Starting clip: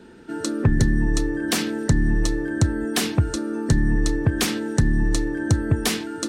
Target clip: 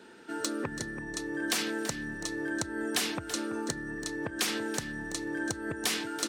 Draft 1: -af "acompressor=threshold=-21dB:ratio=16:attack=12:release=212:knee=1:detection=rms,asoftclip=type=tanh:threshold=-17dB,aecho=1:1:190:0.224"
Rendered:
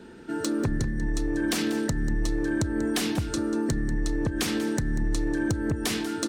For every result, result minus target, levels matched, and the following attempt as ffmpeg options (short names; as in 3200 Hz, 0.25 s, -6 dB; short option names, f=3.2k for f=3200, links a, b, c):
echo 0.142 s early; 1000 Hz band -4.0 dB
-af "acompressor=threshold=-21dB:ratio=16:attack=12:release=212:knee=1:detection=rms,asoftclip=type=tanh:threshold=-17dB,aecho=1:1:332:0.224"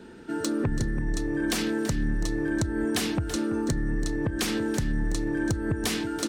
1000 Hz band -3.5 dB
-af "acompressor=threshold=-21dB:ratio=16:attack=12:release=212:knee=1:detection=rms,highpass=f=720:p=1,asoftclip=type=tanh:threshold=-17dB,aecho=1:1:332:0.224"